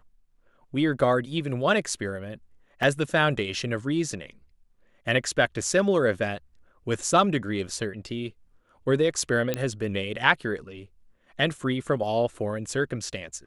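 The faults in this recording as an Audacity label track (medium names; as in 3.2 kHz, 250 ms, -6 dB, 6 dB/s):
2.830000	2.830000	dropout 2.6 ms
9.540000	9.540000	pop -11 dBFS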